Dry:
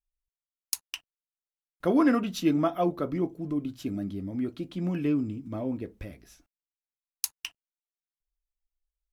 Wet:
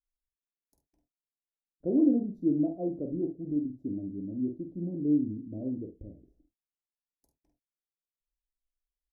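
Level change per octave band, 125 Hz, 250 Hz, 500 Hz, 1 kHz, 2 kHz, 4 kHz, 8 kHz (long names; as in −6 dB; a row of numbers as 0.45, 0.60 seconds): −4.5 dB, −1.0 dB, −5.0 dB, below −15 dB, below −40 dB, below −40 dB, below −40 dB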